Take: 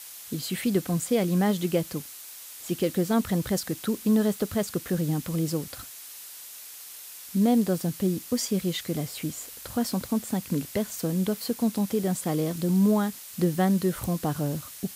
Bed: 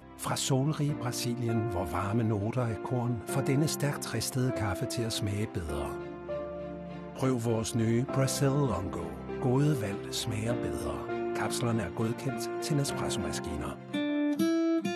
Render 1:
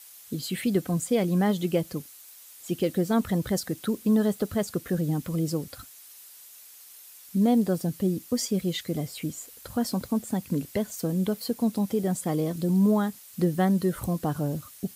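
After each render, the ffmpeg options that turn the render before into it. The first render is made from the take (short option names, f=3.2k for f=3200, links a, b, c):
-af "afftdn=nr=8:nf=-43"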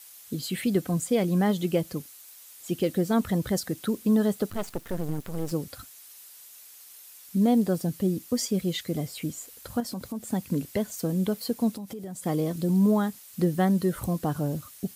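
-filter_complex "[0:a]asettb=1/sr,asplit=3[a][b][c];[a]atrim=end=4.504[d];[b]atrim=start=4.5:end=5.52,asetpts=PTS-STARTPTS,afade=t=in:d=0.004:c=qsin,afade=t=out:st=1.016:d=0.004:c=qsin,aeval=exprs='max(val(0),0)':c=same[e];[c]atrim=start=5.516[f];[d][e]acrossfade=d=0.004:c1=hsin:c2=qsin[g];[g][f]acrossfade=d=0.004:c1=qsin:c2=hsin,asettb=1/sr,asplit=3[h][i][j];[h]atrim=end=9.804[k];[i]atrim=start=9.8:end=10.23,asetpts=PTS-STARTPTS,afade=t=in:d=0.004:c=qsin,afade=t=out:st=0.426:d=0.004:c=qsin,acompressor=threshold=-33dB:ratio=2.5:attack=3.2:release=140:knee=1:detection=peak[l];[j]atrim=start=10.226[m];[k][l]acrossfade=d=0.004:c1=hsin:c2=qsin[n];[n][m]acrossfade=d=0.004:c1=qsin:c2=hsin,asettb=1/sr,asplit=3[o][p][q];[o]atrim=end=11.714[r];[p]atrim=start=11.71:end=12.24,asetpts=PTS-STARTPTS,afade=t=in:d=0.004:c=qsin,afade=t=out:st=0.526:d=0.004:c=qsin,acompressor=threshold=-34dB:ratio=8:attack=3.2:release=140:knee=1:detection=peak[s];[q]atrim=start=12.236[t];[r][s]acrossfade=d=0.004:c1=hsin:c2=qsin[u];[u][t]acrossfade=d=0.004:c1=qsin:c2=hsin"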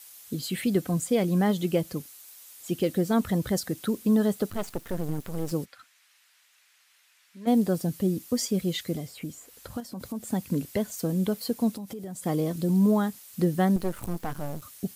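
-filter_complex "[0:a]asplit=3[a][b][c];[a]afade=t=out:st=5.64:d=0.02[d];[b]bandpass=f=1.9k:t=q:w=1.3,afade=t=in:st=5.64:d=0.02,afade=t=out:st=7.46:d=0.02[e];[c]afade=t=in:st=7.46:d=0.02[f];[d][e][f]amix=inputs=3:normalize=0,asettb=1/sr,asplit=3[g][h][i];[g]atrim=end=8.954[j];[h]atrim=start=8.95:end=10,asetpts=PTS-STARTPTS,afade=t=in:d=0.004:c=qsin,afade=t=out:st=1.046:d=0.004:c=qsin,acrossover=split=2400|7700[k][l][m];[k]acompressor=threshold=-32dB:ratio=4[n];[l]acompressor=threshold=-51dB:ratio=4[o];[m]acompressor=threshold=-52dB:ratio=4[p];[n][o][p]amix=inputs=3:normalize=0[q];[i]atrim=start=9.996[r];[j][q]acrossfade=d=0.004:c1=hsin:c2=qsin[s];[s][r]acrossfade=d=0.004:c1=qsin:c2=hsin,asettb=1/sr,asplit=3[t][u][v];[t]atrim=end=13.764[w];[u]atrim=start=13.76:end=14.62,asetpts=PTS-STARTPTS,afade=t=in:d=0.004:c=qsin,afade=t=out:st=0.856:d=0.004:c=qsin,aeval=exprs='max(val(0),0)':c=same[x];[v]atrim=start=14.616[y];[w][x]acrossfade=d=0.004:c1=hsin:c2=qsin[z];[z][y]acrossfade=d=0.004:c1=qsin:c2=hsin"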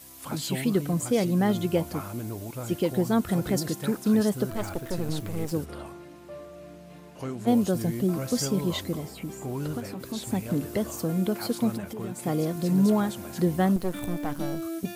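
-filter_complex "[1:a]volume=-6dB[a];[0:a][a]amix=inputs=2:normalize=0"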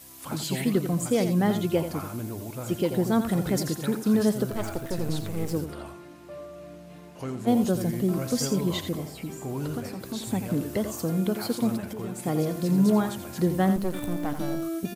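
-af "aecho=1:1:85:0.335"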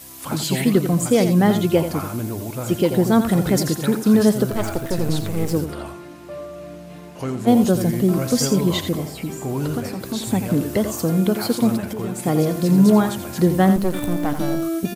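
-af "volume=7.5dB"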